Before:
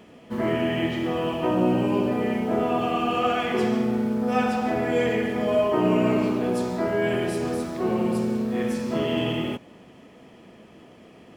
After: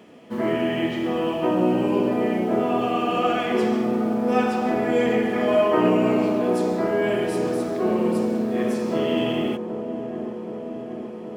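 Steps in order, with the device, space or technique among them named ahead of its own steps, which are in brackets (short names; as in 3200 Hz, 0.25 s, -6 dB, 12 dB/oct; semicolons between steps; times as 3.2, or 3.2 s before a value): 5.33–5.9 bell 1700 Hz +6.5 dB 1.6 oct; dark delay 0.772 s, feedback 72%, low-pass 1100 Hz, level -10 dB; filter by subtraction (in parallel: LPF 290 Hz 12 dB/oct + phase invert)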